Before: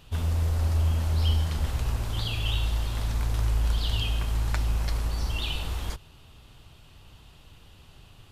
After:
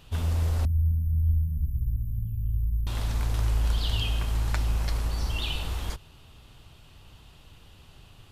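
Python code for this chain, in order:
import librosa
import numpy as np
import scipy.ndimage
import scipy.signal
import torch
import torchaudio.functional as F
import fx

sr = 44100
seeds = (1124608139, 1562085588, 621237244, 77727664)

y = fx.cheby2_bandstop(x, sr, low_hz=380.0, high_hz=8200.0, order=4, stop_db=40, at=(0.65, 2.87))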